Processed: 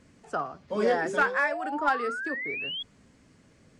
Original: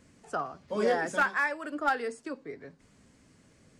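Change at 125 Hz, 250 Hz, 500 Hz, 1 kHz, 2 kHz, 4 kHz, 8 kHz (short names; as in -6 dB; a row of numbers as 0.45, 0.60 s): +2.0, +2.0, +2.5, +3.0, +2.5, +9.5, -2.0 dB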